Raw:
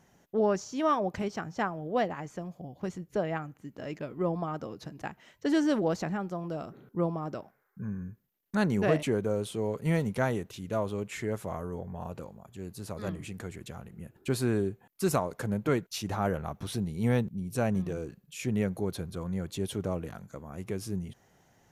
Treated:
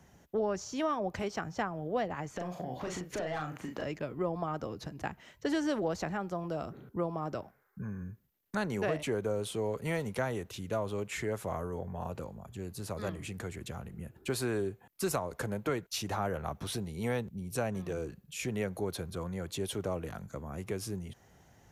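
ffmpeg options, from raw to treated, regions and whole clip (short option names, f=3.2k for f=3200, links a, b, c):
-filter_complex "[0:a]asettb=1/sr,asplit=3[a][b][c];[a]atrim=end=2.364[d];[b]atrim=start=2.36:end=3.84,asetpts=PTS-STARTPTS,afade=t=in:d=0.004:c=qsin,afade=t=out:st=1.476:d=0.004:c=qsin,asplit=2[e][f];[f]highpass=f=720:p=1,volume=22dB,asoftclip=type=tanh:threshold=-18.5dB[g];[e][g]amix=inputs=2:normalize=0,lowpass=f=3.9k:p=1,volume=-6dB,acompressor=threshold=-35dB:ratio=10:attack=3.2:release=140:knee=1:detection=peak,asplit=2[h][i];[i]adelay=39,volume=-4.5dB[j];[h][j]amix=inputs=2:normalize=0,atrim=end_sample=65268[k];[c]atrim=start=3.836[l];[d][k]acrossfade=d=0.004:c1=hsin:c2=qsin[m];[m][l]acrossfade=d=0.004:c1=qsin:c2=hsin,equalizer=f=62:w=0.92:g=9.5,acrossover=split=100|360[n][o][p];[n]acompressor=threshold=-52dB:ratio=4[q];[o]acompressor=threshold=-43dB:ratio=4[r];[p]acompressor=threshold=-32dB:ratio=4[s];[q][r][s]amix=inputs=3:normalize=0,volume=1.5dB"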